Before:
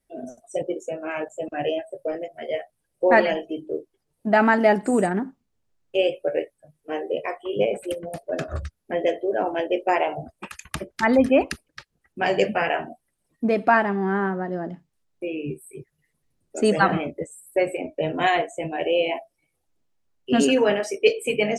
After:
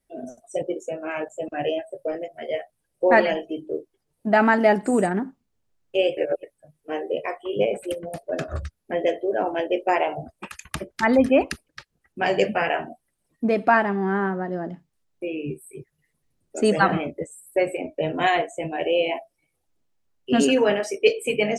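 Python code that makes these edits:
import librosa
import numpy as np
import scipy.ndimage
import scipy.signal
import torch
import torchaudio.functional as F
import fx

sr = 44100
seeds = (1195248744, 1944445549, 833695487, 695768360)

y = fx.edit(x, sr, fx.reverse_span(start_s=6.17, length_s=0.26), tone=tone)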